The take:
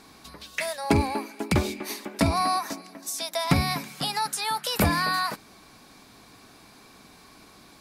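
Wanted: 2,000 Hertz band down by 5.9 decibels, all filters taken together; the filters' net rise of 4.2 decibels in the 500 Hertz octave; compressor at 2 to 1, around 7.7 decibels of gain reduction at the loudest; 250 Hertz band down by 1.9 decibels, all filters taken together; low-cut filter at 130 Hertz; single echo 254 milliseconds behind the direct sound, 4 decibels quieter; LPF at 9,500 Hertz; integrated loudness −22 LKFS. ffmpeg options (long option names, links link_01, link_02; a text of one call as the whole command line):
ffmpeg -i in.wav -af "highpass=130,lowpass=9500,equalizer=frequency=250:width_type=o:gain=-4,equalizer=frequency=500:width_type=o:gain=7.5,equalizer=frequency=2000:width_type=o:gain=-8,acompressor=threshold=-31dB:ratio=2,aecho=1:1:254:0.631,volume=9dB" out.wav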